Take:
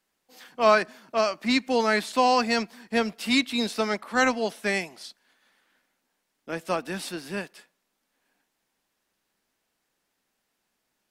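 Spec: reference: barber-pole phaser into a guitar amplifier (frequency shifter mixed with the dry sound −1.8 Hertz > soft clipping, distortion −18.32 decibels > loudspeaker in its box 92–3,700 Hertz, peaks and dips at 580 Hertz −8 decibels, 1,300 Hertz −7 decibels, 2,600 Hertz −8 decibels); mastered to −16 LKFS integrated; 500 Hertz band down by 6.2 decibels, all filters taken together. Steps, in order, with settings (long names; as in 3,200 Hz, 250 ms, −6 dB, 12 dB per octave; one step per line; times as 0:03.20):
parametric band 500 Hz −3.5 dB
frequency shifter mixed with the dry sound −1.8 Hz
soft clipping −18 dBFS
loudspeaker in its box 92–3,700 Hz, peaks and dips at 580 Hz −8 dB, 1,300 Hz −7 dB, 2,600 Hz −8 dB
level +18 dB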